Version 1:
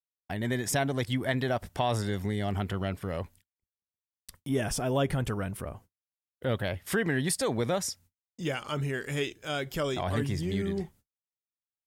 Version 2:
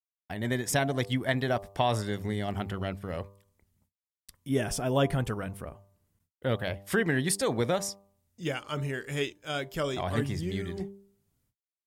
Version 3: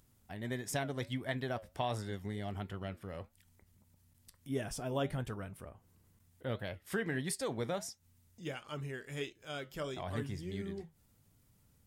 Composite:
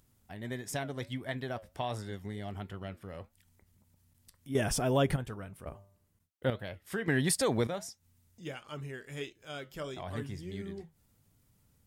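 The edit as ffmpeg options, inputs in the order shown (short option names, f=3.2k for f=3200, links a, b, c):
-filter_complex "[0:a]asplit=2[a][b];[2:a]asplit=4[c][d][e][f];[c]atrim=end=4.552[g];[a]atrim=start=4.548:end=5.162[h];[d]atrim=start=5.158:end=5.662[i];[1:a]atrim=start=5.658:end=6.502[j];[e]atrim=start=6.498:end=7.082[k];[b]atrim=start=7.078:end=7.672[l];[f]atrim=start=7.668[m];[g][h]acrossfade=d=0.004:c1=hsin:c2=hsin[n];[n][i]acrossfade=d=0.004:c1=hsin:c2=hsin[o];[o][j]acrossfade=d=0.004:c1=hsin:c2=hsin[p];[p][k]acrossfade=d=0.004:c1=hsin:c2=hsin[q];[q][l]acrossfade=d=0.004:c1=hsin:c2=hsin[r];[r][m]acrossfade=d=0.004:c1=hsin:c2=hsin"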